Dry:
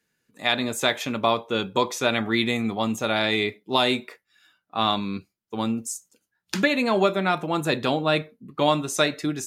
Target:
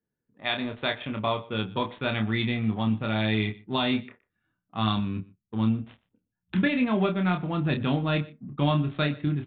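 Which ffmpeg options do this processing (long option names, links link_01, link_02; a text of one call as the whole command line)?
ffmpeg -i in.wav -filter_complex "[0:a]asubboost=boost=6.5:cutoff=190,adynamicsmooth=sensitivity=6.5:basefreq=850,asplit=2[link_01][link_02];[link_02]adelay=28,volume=-6dB[link_03];[link_01][link_03]amix=inputs=2:normalize=0,asplit=2[link_04][link_05];[link_05]aecho=0:1:120:0.0794[link_06];[link_04][link_06]amix=inputs=2:normalize=0,aresample=8000,aresample=44100,volume=-6dB" out.wav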